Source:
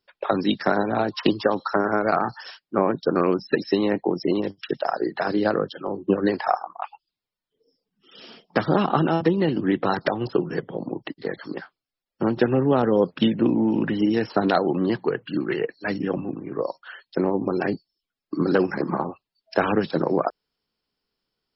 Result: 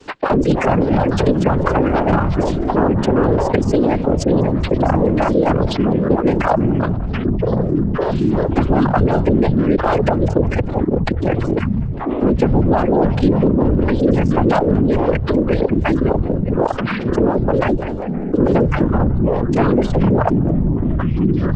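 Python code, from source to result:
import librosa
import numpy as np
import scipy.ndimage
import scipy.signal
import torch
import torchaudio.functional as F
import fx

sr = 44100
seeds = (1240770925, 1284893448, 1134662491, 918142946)

p1 = fx.tracing_dist(x, sr, depth_ms=0.16)
p2 = fx.vocoder(p1, sr, bands=8, carrier='square', carrier_hz=91.1)
p3 = fx.echo_feedback(p2, sr, ms=199, feedback_pct=35, wet_db=-13)
p4 = fx.dereverb_blind(p3, sr, rt60_s=1.2)
p5 = fx.whisperise(p4, sr, seeds[0])
p6 = fx.vibrato(p5, sr, rate_hz=5.1, depth_cents=26.0)
p7 = fx.echo_pitch(p6, sr, ms=193, semitones=-7, count=3, db_per_echo=-6.0)
p8 = fx.backlash(p7, sr, play_db=-34.5)
p9 = p7 + (p8 * 10.0 ** (-12.0 / 20.0))
p10 = fx.env_flatten(p9, sr, amount_pct=70)
y = p10 * 10.0 ** (1.5 / 20.0)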